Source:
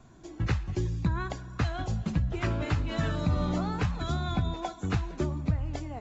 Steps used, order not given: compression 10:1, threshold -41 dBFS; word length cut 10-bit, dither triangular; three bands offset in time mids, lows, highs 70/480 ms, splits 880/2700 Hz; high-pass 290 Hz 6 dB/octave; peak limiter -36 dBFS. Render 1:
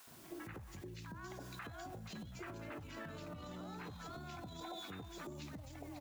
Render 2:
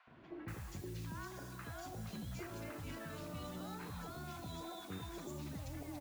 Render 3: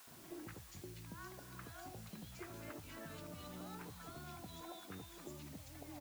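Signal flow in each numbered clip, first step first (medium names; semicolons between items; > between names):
three bands offset in time > word length cut > peak limiter > high-pass > compression; high-pass > peak limiter > compression > word length cut > three bands offset in time; compression > peak limiter > three bands offset in time > word length cut > high-pass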